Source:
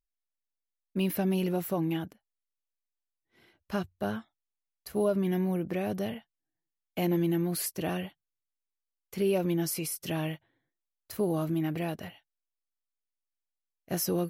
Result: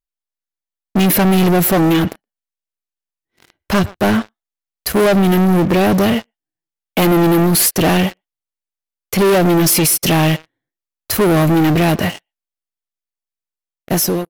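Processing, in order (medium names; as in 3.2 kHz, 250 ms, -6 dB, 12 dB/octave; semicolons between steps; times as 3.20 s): fade out at the end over 0.76 s; speakerphone echo 120 ms, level -23 dB; waveshaping leveller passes 5; trim +8 dB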